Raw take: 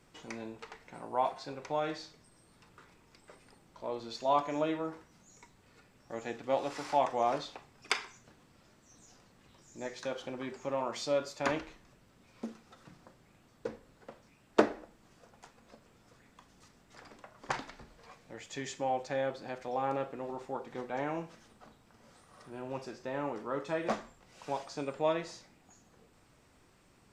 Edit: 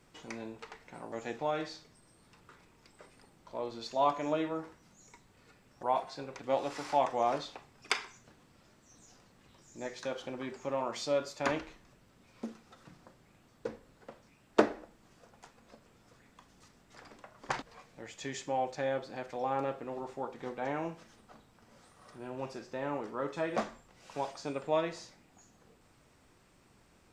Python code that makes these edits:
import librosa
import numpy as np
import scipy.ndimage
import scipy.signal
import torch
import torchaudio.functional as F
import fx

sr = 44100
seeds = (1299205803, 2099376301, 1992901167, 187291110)

y = fx.edit(x, sr, fx.swap(start_s=1.12, length_s=0.56, other_s=6.12, other_length_s=0.27),
    fx.cut(start_s=17.62, length_s=0.32), tone=tone)